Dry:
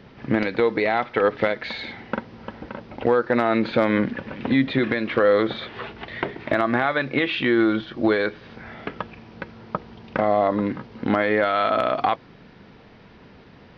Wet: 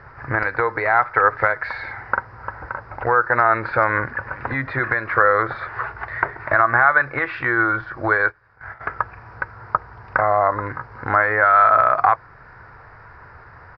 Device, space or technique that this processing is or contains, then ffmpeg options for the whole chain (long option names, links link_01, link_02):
parallel compression: -filter_complex "[0:a]firequalizer=gain_entry='entry(110,0);entry(200,-23);entry(350,-12);entry(960,3);entry(1500,7);entry(3200,-26);entry(5000,-9);entry(7100,-27)':delay=0.05:min_phase=1,asplit=2[link_01][link_02];[link_02]acompressor=threshold=-39dB:ratio=6,volume=-8.5dB[link_03];[link_01][link_03]amix=inputs=2:normalize=0,asettb=1/sr,asplit=3[link_04][link_05][link_06];[link_04]atrim=end=8.284[link_07];[link_05]atrim=start=8.28:end=8.81,asetpts=PTS-STARTPTS,afade=type=in:duration=0.004:curve=qsin,afade=type=out:start_time=0.526:duration=0.004:curve=qsin,agate=range=-18dB:threshold=-35dB:ratio=16:detection=peak[link_08];[link_06]atrim=start=8.806[link_09];[link_07][link_08]acrossfade=duration=0.004:curve1=hsin:curve2=qsin[link_10];[link_10][link_09]acrossfade=duration=0.004:curve1=qsin:curve2=hsin,volume=5dB"